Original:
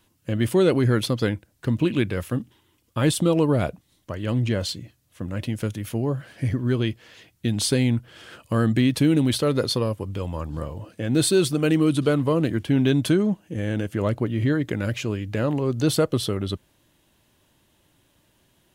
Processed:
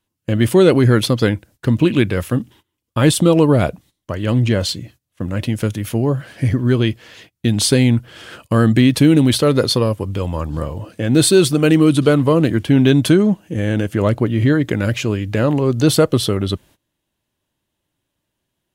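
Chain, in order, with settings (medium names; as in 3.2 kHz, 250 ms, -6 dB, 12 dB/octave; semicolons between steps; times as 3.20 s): gate -50 dBFS, range -20 dB; trim +7.5 dB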